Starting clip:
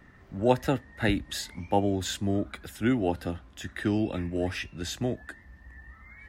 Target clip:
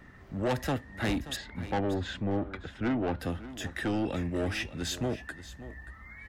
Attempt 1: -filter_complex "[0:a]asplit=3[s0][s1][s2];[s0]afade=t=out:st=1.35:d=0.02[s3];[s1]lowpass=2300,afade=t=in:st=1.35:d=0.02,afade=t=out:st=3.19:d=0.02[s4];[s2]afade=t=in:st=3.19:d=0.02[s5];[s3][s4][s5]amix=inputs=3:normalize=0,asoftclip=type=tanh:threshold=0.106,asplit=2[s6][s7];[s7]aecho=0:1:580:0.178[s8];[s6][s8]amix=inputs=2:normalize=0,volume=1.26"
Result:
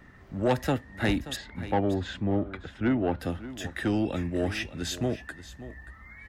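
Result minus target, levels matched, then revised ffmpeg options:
saturation: distortion -6 dB
-filter_complex "[0:a]asplit=3[s0][s1][s2];[s0]afade=t=out:st=1.35:d=0.02[s3];[s1]lowpass=2300,afade=t=in:st=1.35:d=0.02,afade=t=out:st=3.19:d=0.02[s4];[s2]afade=t=in:st=3.19:d=0.02[s5];[s3][s4][s5]amix=inputs=3:normalize=0,asoftclip=type=tanh:threshold=0.0447,asplit=2[s6][s7];[s7]aecho=0:1:580:0.178[s8];[s6][s8]amix=inputs=2:normalize=0,volume=1.26"

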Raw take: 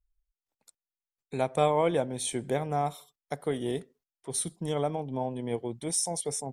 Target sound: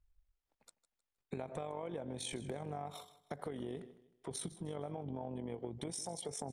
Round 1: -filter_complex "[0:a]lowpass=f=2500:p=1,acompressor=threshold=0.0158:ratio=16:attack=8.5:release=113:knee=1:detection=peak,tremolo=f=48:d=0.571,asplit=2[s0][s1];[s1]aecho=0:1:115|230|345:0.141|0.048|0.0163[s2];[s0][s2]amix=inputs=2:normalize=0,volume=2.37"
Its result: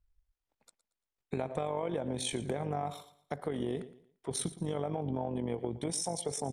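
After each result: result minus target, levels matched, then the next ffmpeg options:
compression: peak gain reduction -8 dB; echo 41 ms early
-filter_complex "[0:a]lowpass=f=2500:p=1,acompressor=threshold=0.00596:ratio=16:attack=8.5:release=113:knee=1:detection=peak,tremolo=f=48:d=0.571,asplit=2[s0][s1];[s1]aecho=0:1:115|230|345:0.141|0.048|0.0163[s2];[s0][s2]amix=inputs=2:normalize=0,volume=2.37"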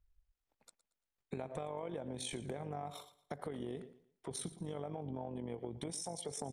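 echo 41 ms early
-filter_complex "[0:a]lowpass=f=2500:p=1,acompressor=threshold=0.00596:ratio=16:attack=8.5:release=113:knee=1:detection=peak,tremolo=f=48:d=0.571,asplit=2[s0][s1];[s1]aecho=0:1:156|312|468:0.141|0.048|0.0163[s2];[s0][s2]amix=inputs=2:normalize=0,volume=2.37"

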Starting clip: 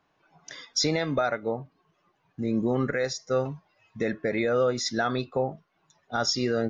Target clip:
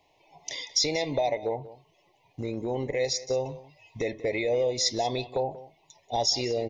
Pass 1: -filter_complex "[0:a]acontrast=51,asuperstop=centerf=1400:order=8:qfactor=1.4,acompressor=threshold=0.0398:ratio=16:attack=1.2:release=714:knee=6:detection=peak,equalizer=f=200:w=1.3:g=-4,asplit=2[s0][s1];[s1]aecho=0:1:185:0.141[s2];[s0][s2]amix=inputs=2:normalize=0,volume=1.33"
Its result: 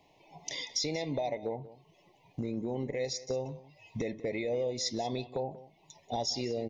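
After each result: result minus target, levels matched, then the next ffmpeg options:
compression: peak gain reduction +8.5 dB; 250 Hz band +4.5 dB
-filter_complex "[0:a]acontrast=51,asuperstop=centerf=1400:order=8:qfactor=1.4,acompressor=threshold=0.112:ratio=16:attack=1.2:release=714:knee=6:detection=peak,equalizer=f=200:w=1.3:g=-4,asplit=2[s0][s1];[s1]aecho=0:1:185:0.141[s2];[s0][s2]amix=inputs=2:normalize=0,volume=1.33"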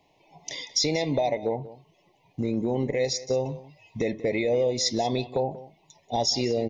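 250 Hz band +4.5 dB
-filter_complex "[0:a]acontrast=51,asuperstop=centerf=1400:order=8:qfactor=1.4,acompressor=threshold=0.112:ratio=16:attack=1.2:release=714:knee=6:detection=peak,equalizer=f=200:w=1.3:g=-15,asplit=2[s0][s1];[s1]aecho=0:1:185:0.141[s2];[s0][s2]amix=inputs=2:normalize=0,volume=1.33"

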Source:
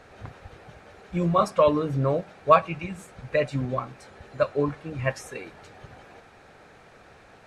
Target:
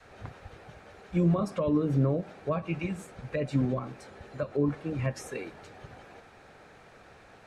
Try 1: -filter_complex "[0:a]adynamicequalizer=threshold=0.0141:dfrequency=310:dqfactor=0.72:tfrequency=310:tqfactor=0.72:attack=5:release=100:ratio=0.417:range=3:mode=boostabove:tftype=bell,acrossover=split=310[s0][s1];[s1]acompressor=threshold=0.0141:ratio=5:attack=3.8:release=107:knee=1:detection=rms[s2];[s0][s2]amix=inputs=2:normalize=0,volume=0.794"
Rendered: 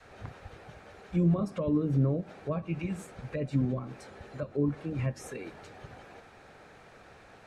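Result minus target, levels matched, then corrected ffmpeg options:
compression: peak gain reduction +6.5 dB
-filter_complex "[0:a]adynamicequalizer=threshold=0.0141:dfrequency=310:dqfactor=0.72:tfrequency=310:tqfactor=0.72:attack=5:release=100:ratio=0.417:range=3:mode=boostabove:tftype=bell,acrossover=split=310[s0][s1];[s1]acompressor=threshold=0.0355:ratio=5:attack=3.8:release=107:knee=1:detection=rms[s2];[s0][s2]amix=inputs=2:normalize=0,volume=0.794"

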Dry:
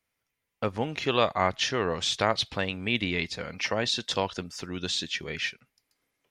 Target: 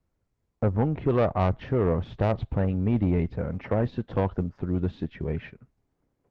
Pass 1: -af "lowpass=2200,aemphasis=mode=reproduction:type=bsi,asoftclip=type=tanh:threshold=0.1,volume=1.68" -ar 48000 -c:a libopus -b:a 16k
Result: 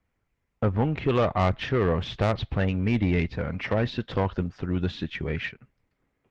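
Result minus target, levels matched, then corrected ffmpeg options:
2 kHz band +8.0 dB
-af "lowpass=910,aemphasis=mode=reproduction:type=bsi,asoftclip=type=tanh:threshold=0.1,volume=1.68" -ar 48000 -c:a libopus -b:a 16k

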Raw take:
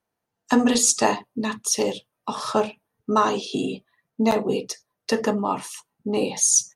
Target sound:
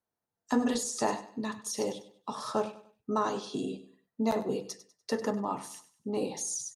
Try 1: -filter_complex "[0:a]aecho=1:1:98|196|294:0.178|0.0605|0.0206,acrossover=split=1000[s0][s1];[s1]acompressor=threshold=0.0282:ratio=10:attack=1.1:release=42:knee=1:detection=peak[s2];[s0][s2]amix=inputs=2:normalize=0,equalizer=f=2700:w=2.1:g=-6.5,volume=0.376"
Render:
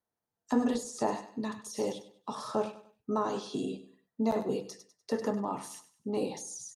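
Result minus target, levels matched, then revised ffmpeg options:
compression: peak gain reduction +8 dB
-filter_complex "[0:a]aecho=1:1:98|196|294:0.178|0.0605|0.0206,acrossover=split=1000[s0][s1];[s1]acompressor=threshold=0.0794:ratio=10:attack=1.1:release=42:knee=1:detection=peak[s2];[s0][s2]amix=inputs=2:normalize=0,equalizer=f=2700:w=2.1:g=-6.5,volume=0.376"

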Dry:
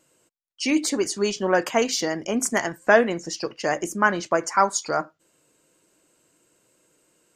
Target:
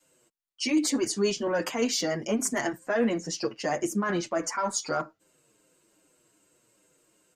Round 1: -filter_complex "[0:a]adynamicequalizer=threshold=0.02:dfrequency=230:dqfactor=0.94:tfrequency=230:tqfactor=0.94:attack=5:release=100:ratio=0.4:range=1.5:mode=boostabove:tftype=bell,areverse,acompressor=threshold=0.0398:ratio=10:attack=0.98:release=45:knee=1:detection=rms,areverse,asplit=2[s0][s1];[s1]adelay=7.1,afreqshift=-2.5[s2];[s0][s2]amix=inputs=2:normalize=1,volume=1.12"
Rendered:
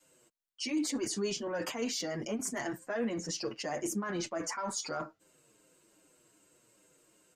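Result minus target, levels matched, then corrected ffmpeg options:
compression: peak gain reduction +8.5 dB
-filter_complex "[0:a]adynamicequalizer=threshold=0.02:dfrequency=230:dqfactor=0.94:tfrequency=230:tqfactor=0.94:attack=5:release=100:ratio=0.4:range=1.5:mode=boostabove:tftype=bell,areverse,acompressor=threshold=0.119:ratio=10:attack=0.98:release=45:knee=1:detection=rms,areverse,asplit=2[s0][s1];[s1]adelay=7.1,afreqshift=-2.5[s2];[s0][s2]amix=inputs=2:normalize=1,volume=1.12"

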